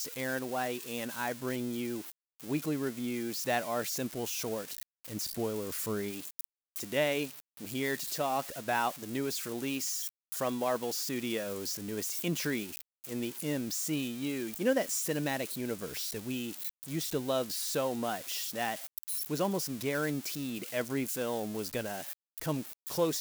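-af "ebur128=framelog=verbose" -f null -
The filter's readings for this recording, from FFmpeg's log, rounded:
Integrated loudness:
  I:         -34.1 LUFS
  Threshold: -44.2 LUFS
Loudness range:
  LRA:         1.9 LU
  Threshold: -54.0 LUFS
  LRA low:   -35.0 LUFS
  LRA high:  -33.1 LUFS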